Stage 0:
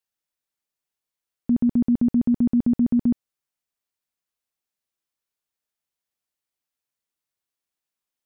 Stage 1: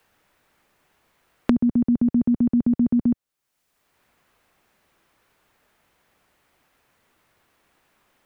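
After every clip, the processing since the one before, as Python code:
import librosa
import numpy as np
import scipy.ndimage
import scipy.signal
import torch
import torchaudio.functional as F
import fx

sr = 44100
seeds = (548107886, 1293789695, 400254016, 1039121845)

y = fx.band_squash(x, sr, depth_pct=100)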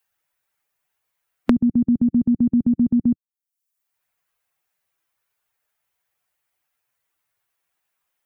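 y = fx.bin_expand(x, sr, power=1.5)
y = y * 10.0 ** (3.0 / 20.0)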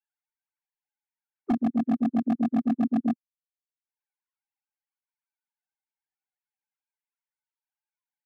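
y = fx.sine_speech(x, sr)
y = 10.0 ** (-12.0 / 20.0) * (np.abs((y / 10.0 ** (-12.0 / 20.0) + 3.0) % 4.0 - 2.0) - 1.0)
y = y * 10.0 ** (-5.5 / 20.0)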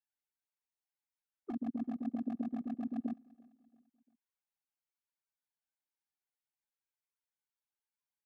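y = fx.over_compress(x, sr, threshold_db=-26.0, ratio=-0.5)
y = fx.echo_feedback(y, sr, ms=341, feedback_pct=46, wet_db=-24)
y = y * 10.0 ** (-9.0 / 20.0)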